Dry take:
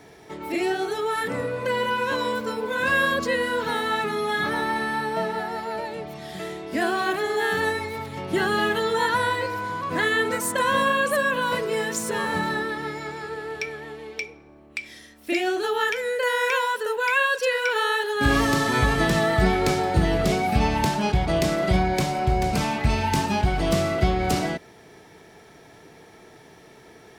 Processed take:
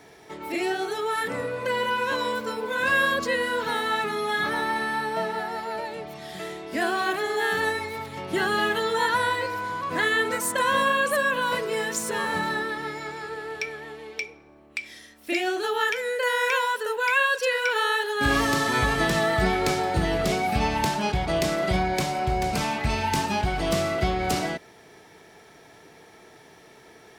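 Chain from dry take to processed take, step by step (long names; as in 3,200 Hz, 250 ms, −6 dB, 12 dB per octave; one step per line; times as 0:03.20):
low-shelf EQ 370 Hz −5.5 dB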